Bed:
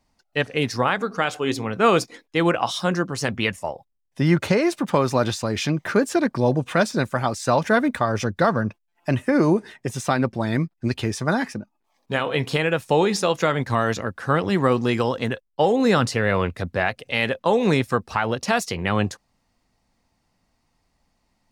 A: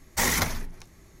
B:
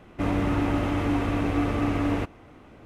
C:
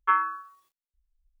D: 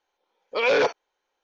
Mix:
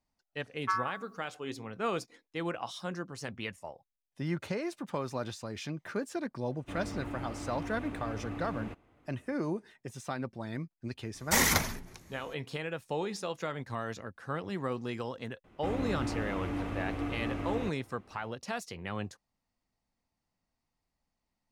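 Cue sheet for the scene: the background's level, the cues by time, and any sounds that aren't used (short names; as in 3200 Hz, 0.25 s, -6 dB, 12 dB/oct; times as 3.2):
bed -15.5 dB
0.6 add C -8.5 dB
6.49 add B -15.5 dB + notch 5700 Hz
11.14 add A -1 dB + HPF 69 Hz 6 dB/oct
15.44 add B -10.5 dB
not used: D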